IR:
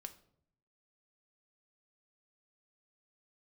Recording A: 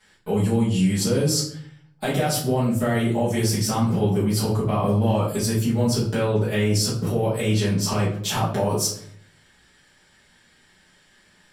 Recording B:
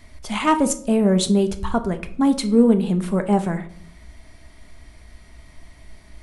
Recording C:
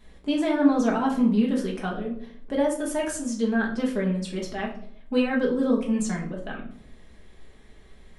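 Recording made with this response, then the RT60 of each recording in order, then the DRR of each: B; 0.65, 0.65, 0.65 seconds; −10.5, 7.5, −2.5 decibels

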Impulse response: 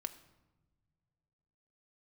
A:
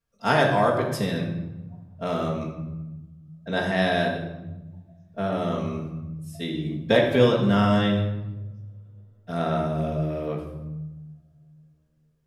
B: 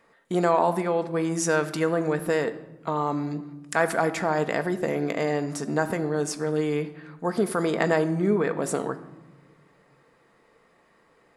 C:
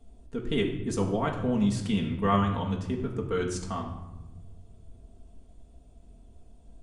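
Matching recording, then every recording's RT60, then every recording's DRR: B; 1.1 s, non-exponential decay, 1.1 s; −8.5, 8.5, −1.5 decibels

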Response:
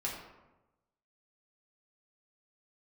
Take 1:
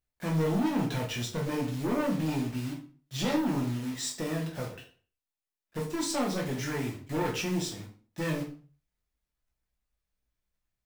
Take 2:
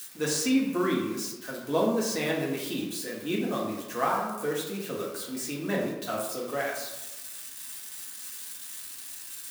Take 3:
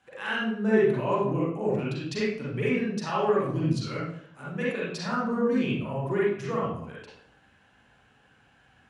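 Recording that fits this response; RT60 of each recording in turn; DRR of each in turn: 2; 0.40, 1.0, 0.60 seconds; −2.0, −4.5, −7.5 decibels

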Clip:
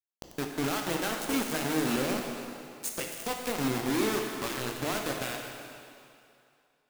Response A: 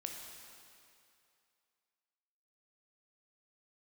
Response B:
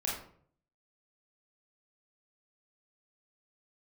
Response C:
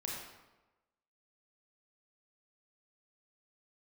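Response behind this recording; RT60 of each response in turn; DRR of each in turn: A; 2.5, 0.55, 1.1 seconds; 1.5, −5.0, −3.0 decibels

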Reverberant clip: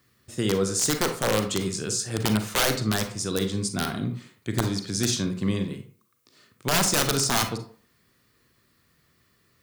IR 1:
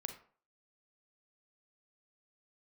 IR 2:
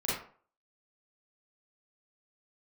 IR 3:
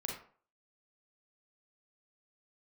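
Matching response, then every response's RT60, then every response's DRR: 1; 0.45, 0.45, 0.45 seconds; 6.5, −8.5, −1.0 decibels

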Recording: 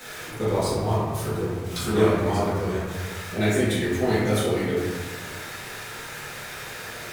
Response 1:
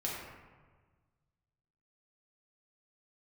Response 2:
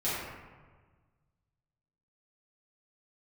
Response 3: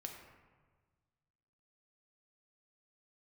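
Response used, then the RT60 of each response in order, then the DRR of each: 2; 1.4, 1.4, 1.5 seconds; −5.0, −12.0, 2.0 decibels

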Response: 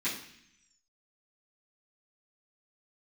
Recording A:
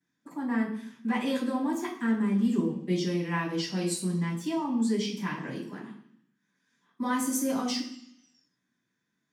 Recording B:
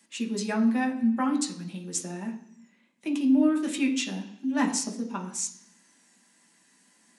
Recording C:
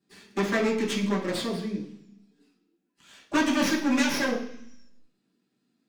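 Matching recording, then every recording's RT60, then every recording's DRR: A; 0.65, 0.65, 0.65 seconds; −13.0, 1.5, −6.5 decibels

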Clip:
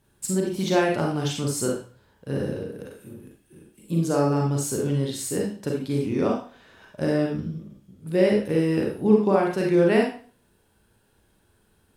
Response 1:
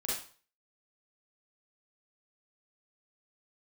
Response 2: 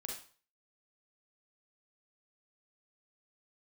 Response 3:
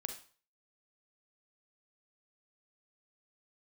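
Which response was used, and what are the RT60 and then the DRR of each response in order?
2; 0.40, 0.40, 0.40 seconds; −7.0, −1.0, 5.0 decibels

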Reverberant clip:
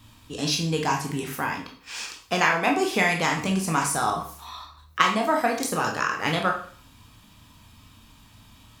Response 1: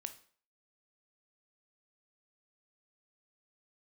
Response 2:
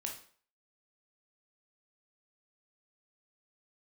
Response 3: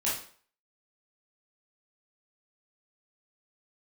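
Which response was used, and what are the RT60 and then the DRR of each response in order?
2; 0.50, 0.50, 0.50 seconds; 8.5, 0.5, −8.0 decibels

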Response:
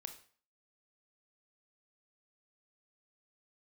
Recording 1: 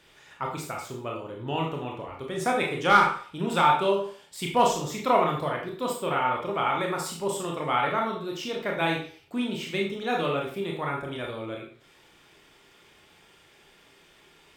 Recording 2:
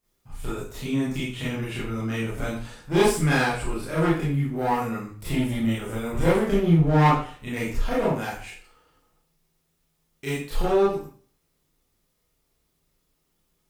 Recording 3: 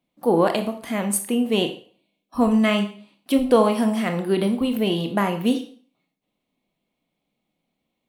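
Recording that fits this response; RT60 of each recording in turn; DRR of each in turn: 3; 0.45, 0.45, 0.45 seconds; −0.5, −9.0, 6.5 decibels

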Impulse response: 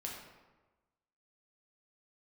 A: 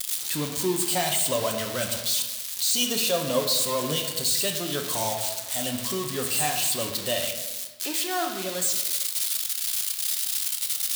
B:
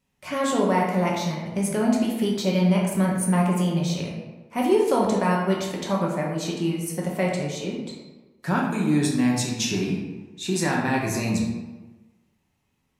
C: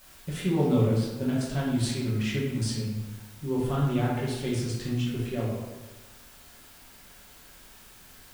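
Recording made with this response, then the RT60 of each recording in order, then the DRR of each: B; 1.2, 1.2, 1.2 seconds; 3.0, −2.5, −6.5 decibels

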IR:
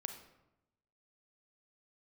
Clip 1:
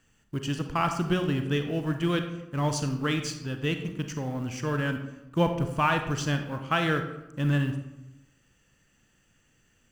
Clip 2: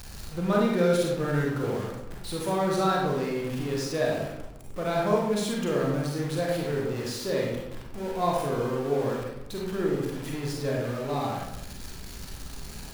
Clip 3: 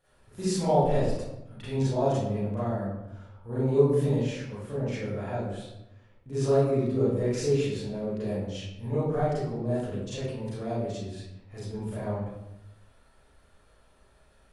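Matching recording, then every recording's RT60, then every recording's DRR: 1; 0.90, 0.90, 0.90 seconds; 6.0, −3.5, −12.0 decibels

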